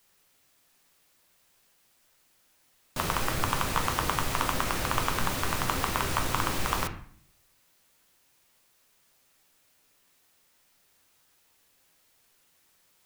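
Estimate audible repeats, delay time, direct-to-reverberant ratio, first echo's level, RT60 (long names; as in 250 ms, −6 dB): no echo audible, no echo audible, 4.0 dB, no echo audible, 0.55 s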